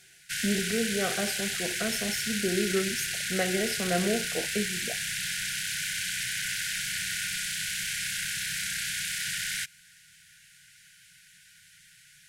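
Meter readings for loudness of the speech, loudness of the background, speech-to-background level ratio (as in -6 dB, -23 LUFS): -31.5 LUFS, -30.0 LUFS, -1.5 dB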